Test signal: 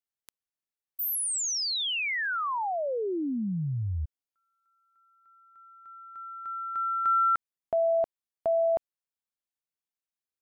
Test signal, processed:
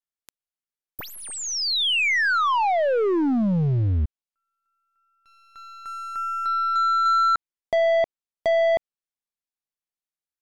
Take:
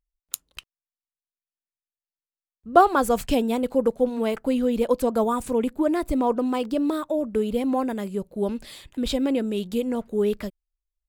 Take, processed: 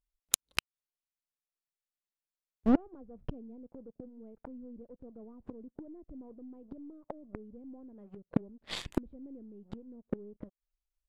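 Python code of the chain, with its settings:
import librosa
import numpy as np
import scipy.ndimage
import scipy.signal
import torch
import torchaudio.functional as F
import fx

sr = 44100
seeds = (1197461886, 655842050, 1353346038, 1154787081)

y = np.where(x < 0.0, 10.0 ** (-3.0 / 20.0) * x, x)
y = fx.leveller(y, sr, passes=3)
y = fx.env_lowpass_down(y, sr, base_hz=350.0, full_db=-13.5)
y = fx.gate_flip(y, sr, shuts_db=-16.0, range_db=-35)
y = y * 10.0 ** (3.5 / 20.0)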